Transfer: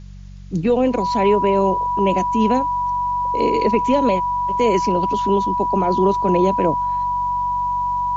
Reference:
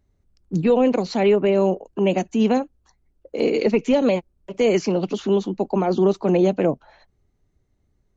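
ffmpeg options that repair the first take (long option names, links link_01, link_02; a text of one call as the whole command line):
ffmpeg -i in.wav -af "bandreject=frequency=47.2:width_type=h:width=4,bandreject=frequency=94.4:width_type=h:width=4,bandreject=frequency=141.6:width_type=h:width=4,bandreject=frequency=188.8:width_type=h:width=4,bandreject=frequency=980:width=30,agate=range=-21dB:threshold=-13dB" out.wav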